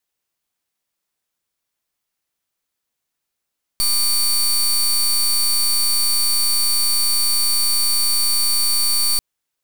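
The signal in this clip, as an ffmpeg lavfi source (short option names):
-f lavfi -i "aevalsrc='0.141*(2*lt(mod(4530*t,1),0.22)-1)':d=5.39:s=44100"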